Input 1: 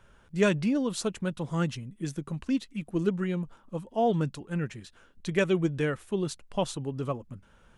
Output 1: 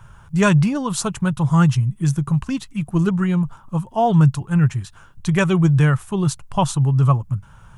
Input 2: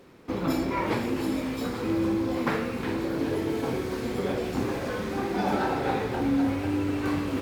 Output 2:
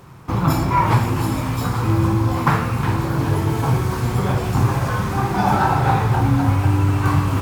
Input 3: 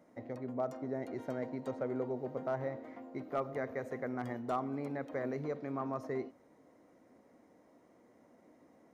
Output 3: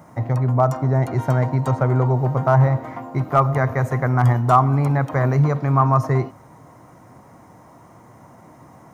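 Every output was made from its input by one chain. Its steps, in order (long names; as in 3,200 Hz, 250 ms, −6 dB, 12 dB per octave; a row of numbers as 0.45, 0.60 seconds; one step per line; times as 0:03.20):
octave-band graphic EQ 125/250/500/1,000/2,000/4,000 Hz +12/−10/−11/+6/−6/−6 dB
loudness normalisation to −19 LKFS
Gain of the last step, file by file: +13.0, +12.0, +22.5 decibels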